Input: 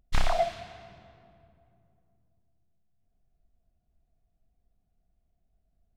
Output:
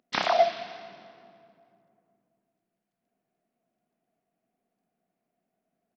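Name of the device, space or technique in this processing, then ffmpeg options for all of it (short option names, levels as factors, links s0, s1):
Bluetooth headset: -af "highpass=f=210:w=0.5412,highpass=f=210:w=1.3066,aresample=16000,aresample=44100,volume=1.88" -ar 44100 -c:a sbc -b:a 64k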